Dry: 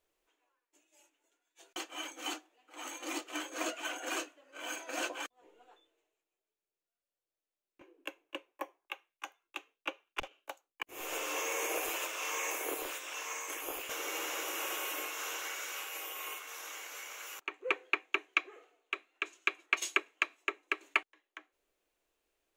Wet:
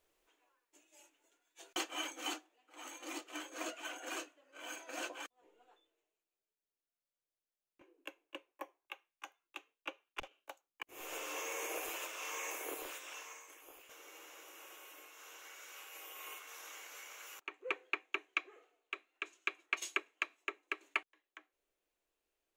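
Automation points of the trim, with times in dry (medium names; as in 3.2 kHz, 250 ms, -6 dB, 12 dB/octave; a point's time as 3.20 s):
1.82 s +3 dB
2.76 s -6 dB
13.12 s -6 dB
13.53 s -17.5 dB
15.07 s -17.5 dB
16.37 s -6 dB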